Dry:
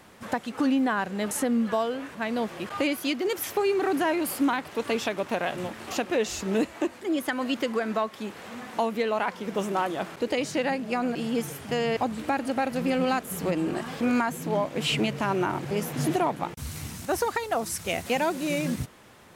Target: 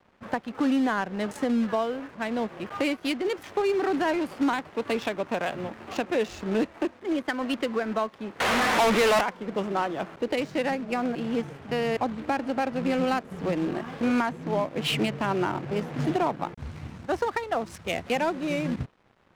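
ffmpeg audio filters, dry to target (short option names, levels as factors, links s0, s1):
-filter_complex "[0:a]acrossover=split=420|690|6500[s0][s1][s2][s3];[s0]acrusher=bits=3:mode=log:mix=0:aa=0.000001[s4];[s4][s1][s2][s3]amix=inputs=4:normalize=0,asettb=1/sr,asplit=3[s5][s6][s7];[s5]atrim=end=8.404[s8];[s6]atrim=start=8.4:end=9.21,asetpts=PTS-STARTPTS,afade=t=in:d=0.004:c=qsin,afade=t=out:st=0.806:d=0.004:c=qsin,asplit=2[s9][s10];[s10]highpass=f=720:p=1,volume=56.2,asoftclip=type=tanh:threshold=0.2[s11];[s9][s11]amix=inputs=2:normalize=0,lowpass=f=3800:p=1,volume=0.501[s12];[s7]atrim=start=9.206[s13];[s8][s12]acrossfade=d=0.004:c1=hsin:c2=qsin[s14];[s14][s13]acrossfade=d=0.004:c1=qsin:c2=hsin,adynamicsmooth=sensitivity=5:basefreq=1700,aeval=exprs='sgn(val(0))*max(abs(val(0))-0.002,0)':c=same"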